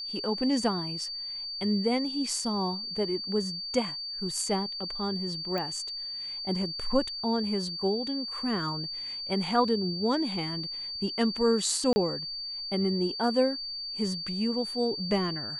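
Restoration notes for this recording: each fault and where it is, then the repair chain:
whistle 4,600 Hz −34 dBFS
0:05.58: click −20 dBFS
0:11.93–0:11.96: drop-out 30 ms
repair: click removal
notch filter 4,600 Hz, Q 30
repair the gap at 0:11.93, 30 ms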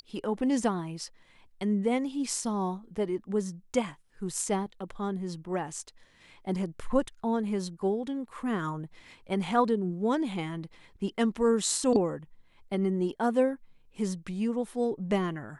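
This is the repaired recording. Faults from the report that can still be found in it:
none of them is left

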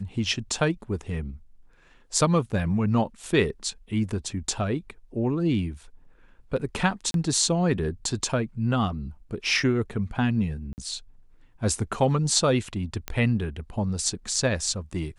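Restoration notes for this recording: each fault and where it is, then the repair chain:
0:07.11–0:07.14: drop-out 32 ms
0:10.73–0:10.78: drop-out 49 ms
0:13.08: click −13 dBFS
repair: click removal
repair the gap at 0:07.11, 32 ms
repair the gap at 0:10.73, 49 ms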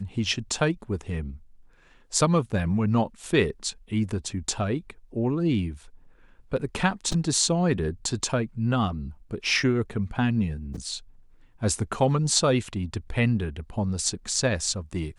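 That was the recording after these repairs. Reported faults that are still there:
none of them is left

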